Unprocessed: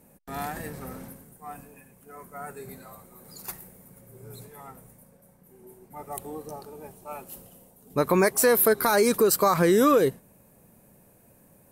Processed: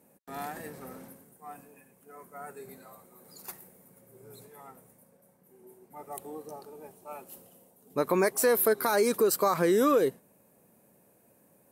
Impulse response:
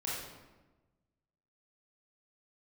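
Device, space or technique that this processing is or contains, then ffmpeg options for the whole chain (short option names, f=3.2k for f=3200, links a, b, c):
filter by subtraction: -filter_complex "[0:a]asplit=2[a][b];[b]lowpass=350,volume=-1[c];[a][c]amix=inputs=2:normalize=0,volume=-5.5dB"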